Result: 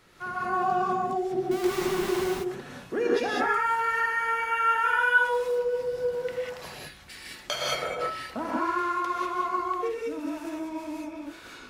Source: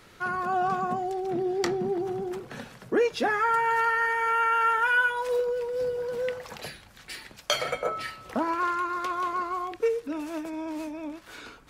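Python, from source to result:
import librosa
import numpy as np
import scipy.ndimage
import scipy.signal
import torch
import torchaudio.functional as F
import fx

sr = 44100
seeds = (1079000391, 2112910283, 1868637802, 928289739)

y = fx.schmitt(x, sr, flips_db=-34.0, at=(1.51, 2.24))
y = fx.rev_gated(y, sr, seeds[0], gate_ms=220, shape='rising', drr_db=-4.5)
y = F.gain(torch.from_numpy(y), -6.0).numpy()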